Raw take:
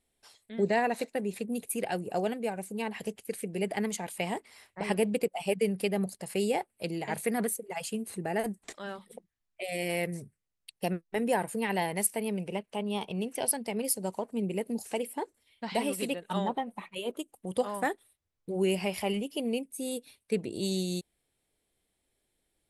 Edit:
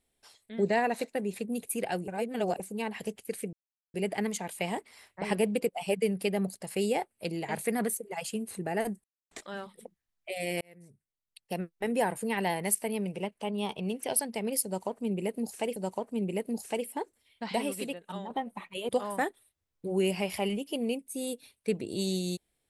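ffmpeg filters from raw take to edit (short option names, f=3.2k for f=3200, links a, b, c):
-filter_complex "[0:a]asplit=9[a][b][c][d][e][f][g][h][i];[a]atrim=end=2.082[j];[b]atrim=start=2.078:end=2.602,asetpts=PTS-STARTPTS,areverse[k];[c]atrim=start=2.598:end=3.53,asetpts=PTS-STARTPTS,afade=t=out:st=0.928:d=0.004:c=hsin,apad=pad_dur=0.41[l];[d]atrim=start=3.53:end=8.63,asetpts=PTS-STARTPTS,afade=t=in:d=0.004:c=hsin,afade=t=out:st=5.096:d=0.004:c=hsin,apad=pad_dur=0.27[m];[e]atrim=start=8.63:end=9.93,asetpts=PTS-STARTPTS,afade=t=in:d=0.004:c=hsin,afade=t=out:st=1.296:d=0.004:c=hsin[n];[f]atrim=start=9.93:end=15.082,asetpts=PTS-STARTPTS,afade=t=in:d=1.39[o];[g]atrim=start=13.968:end=16.51,asetpts=PTS-STARTPTS,afade=t=out:st=1.732:d=0.81:silence=0.281838[p];[h]atrim=start=16.51:end=17.102,asetpts=PTS-STARTPTS,afade=t=in:d=0.004:c=hsin:silence=0.281838[q];[i]atrim=start=17.528[r];[j][k]acrossfade=d=0.004:c1=hsin:c2=hsin[s];[l][m][n][o]concat=n=4:v=0:a=1[t];[s][t]acrossfade=d=0.004:c1=hsin:c2=hsin[u];[p][q]concat=n=2:v=0:a=1[v];[u][v]acrossfade=d=0.004:c1=hsin:c2=hsin[w];[w][r]acrossfade=d=0.004:c1=hsin:c2=hsin"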